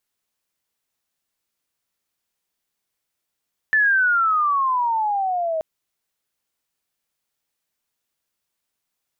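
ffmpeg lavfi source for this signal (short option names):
-f lavfi -i "aevalsrc='pow(10,(-13.5-7*t/1.88)/20)*sin(2*PI*1770*1.88/(-18*log(2)/12)*(exp(-18*log(2)/12*t/1.88)-1))':d=1.88:s=44100"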